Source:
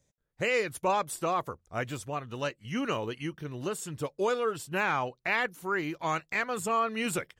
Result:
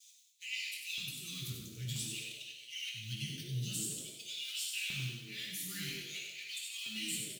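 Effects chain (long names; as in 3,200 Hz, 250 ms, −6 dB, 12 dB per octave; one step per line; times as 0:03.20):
mu-law and A-law mismatch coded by mu
noise gate with hold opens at −59 dBFS
elliptic band-stop filter 110–3,400 Hz, stop band 70 dB
auto-filter high-pass square 0.51 Hz 200–2,400 Hz
downward compressor 5 to 1, threshold −47 dBFS, peak gain reduction 14.5 dB
volume swells 140 ms
echo with shifted repeats 94 ms, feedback 44%, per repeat +100 Hz, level −6 dB
convolution reverb RT60 1.3 s, pre-delay 4 ms, DRR −3.5 dB
level +5.5 dB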